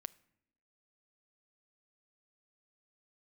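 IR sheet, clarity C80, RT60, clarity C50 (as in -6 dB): 24.5 dB, 0.80 s, 22.0 dB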